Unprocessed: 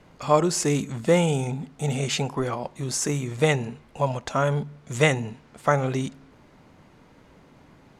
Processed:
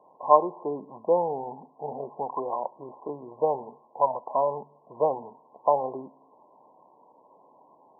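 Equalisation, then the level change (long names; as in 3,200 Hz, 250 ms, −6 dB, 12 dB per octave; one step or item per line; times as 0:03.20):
high-pass filter 790 Hz 12 dB per octave
linear-phase brick-wall low-pass 1,100 Hz
+6.5 dB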